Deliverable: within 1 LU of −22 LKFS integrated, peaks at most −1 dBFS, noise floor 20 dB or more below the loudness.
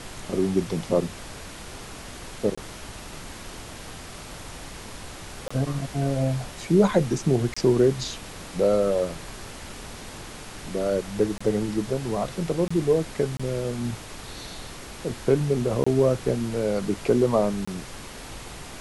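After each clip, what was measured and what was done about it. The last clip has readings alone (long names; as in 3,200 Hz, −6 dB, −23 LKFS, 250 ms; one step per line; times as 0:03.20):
number of dropouts 8; longest dropout 25 ms; background noise floor −40 dBFS; target noise floor −45 dBFS; integrated loudness −25.0 LKFS; sample peak −7.0 dBFS; target loudness −22.0 LKFS
→ repair the gap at 0:02.55/0:05.48/0:07.54/0:11.38/0:12.68/0:13.37/0:15.84/0:17.65, 25 ms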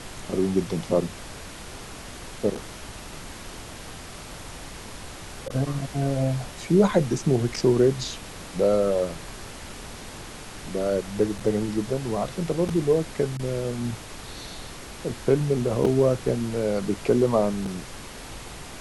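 number of dropouts 0; background noise floor −40 dBFS; target noise floor −45 dBFS
→ noise reduction from a noise print 6 dB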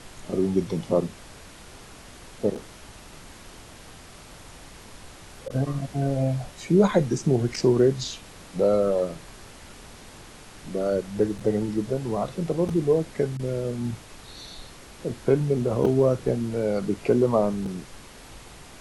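background noise floor −46 dBFS; integrated loudness −25.0 LKFS; sample peak −7.5 dBFS; target loudness −22.0 LKFS
→ level +3 dB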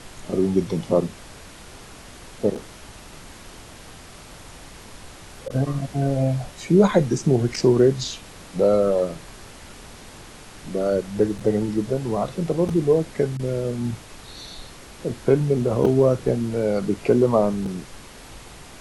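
integrated loudness −22.0 LKFS; sample peak −4.5 dBFS; background noise floor −43 dBFS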